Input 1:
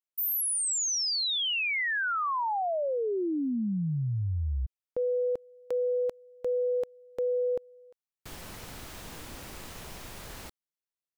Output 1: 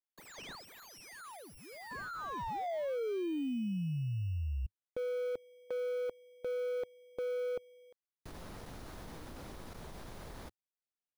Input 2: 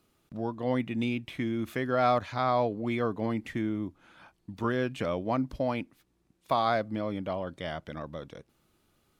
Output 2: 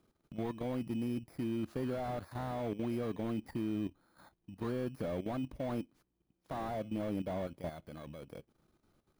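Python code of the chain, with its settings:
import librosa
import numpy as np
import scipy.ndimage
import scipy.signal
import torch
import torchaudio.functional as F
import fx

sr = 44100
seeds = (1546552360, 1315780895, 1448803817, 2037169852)

y = fx.bit_reversed(x, sr, seeds[0], block=16)
y = fx.lowpass(y, sr, hz=2700.0, slope=6)
y = fx.peak_eq(y, sr, hz=100.0, db=-2.0, octaves=0.41)
y = fx.level_steps(y, sr, step_db=12)
y = fx.slew_limit(y, sr, full_power_hz=11.0)
y = y * librosa.db_to_amplitude(1.0)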